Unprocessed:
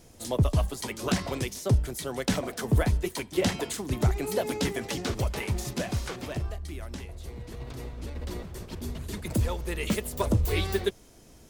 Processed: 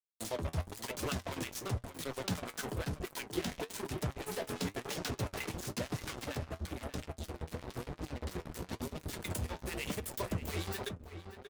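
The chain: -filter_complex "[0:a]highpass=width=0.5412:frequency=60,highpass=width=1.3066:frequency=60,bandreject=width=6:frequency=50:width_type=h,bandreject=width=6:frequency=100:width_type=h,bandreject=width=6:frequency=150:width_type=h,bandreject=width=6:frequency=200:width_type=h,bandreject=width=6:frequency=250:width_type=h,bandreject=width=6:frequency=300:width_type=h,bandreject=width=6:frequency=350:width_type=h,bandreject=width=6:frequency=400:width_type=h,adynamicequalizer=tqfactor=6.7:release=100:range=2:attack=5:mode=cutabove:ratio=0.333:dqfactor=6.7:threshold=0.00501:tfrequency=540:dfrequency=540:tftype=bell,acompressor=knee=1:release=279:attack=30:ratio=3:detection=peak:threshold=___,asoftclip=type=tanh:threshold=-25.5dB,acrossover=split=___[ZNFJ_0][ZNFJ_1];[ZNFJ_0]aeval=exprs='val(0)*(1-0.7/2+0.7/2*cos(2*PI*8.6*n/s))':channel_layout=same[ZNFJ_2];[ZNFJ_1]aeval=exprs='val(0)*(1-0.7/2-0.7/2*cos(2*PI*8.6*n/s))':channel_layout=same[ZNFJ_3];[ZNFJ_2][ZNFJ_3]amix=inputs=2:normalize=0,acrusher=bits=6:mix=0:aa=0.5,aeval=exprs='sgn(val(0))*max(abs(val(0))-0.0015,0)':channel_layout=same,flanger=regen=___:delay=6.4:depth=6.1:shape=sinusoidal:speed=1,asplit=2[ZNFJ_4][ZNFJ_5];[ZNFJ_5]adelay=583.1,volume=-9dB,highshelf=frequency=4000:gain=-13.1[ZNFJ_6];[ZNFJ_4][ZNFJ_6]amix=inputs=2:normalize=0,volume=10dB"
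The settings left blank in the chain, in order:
-42dB, 960, 58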